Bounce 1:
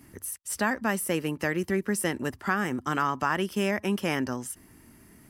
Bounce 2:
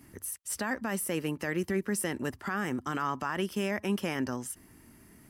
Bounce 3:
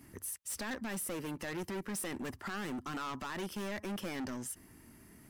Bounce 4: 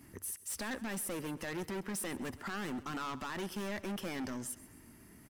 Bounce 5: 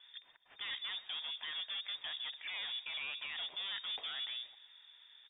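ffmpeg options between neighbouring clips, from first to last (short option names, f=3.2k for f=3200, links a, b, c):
-af "alimiter=limit=-19dB:level=0:latency=1:release=15,volume=-2dB"
-af "asoftclip=type=hard:threshold=-34.5dB,volume=-1.5dB"
-af "aecho=1:1:131|262|393|524:0.126|0.0554|0.0244|0.0107"
-af "lowpass=f=3.1k:t=q:w=0.5098,lowpass=f=3.1k:t=q:w=0.6013,lowpass=f=3.1k:t=q:w=0.9,lowpass=f=3.1k:t=q:w=2.563,afreqshift=-3700,volume=-2.5dB"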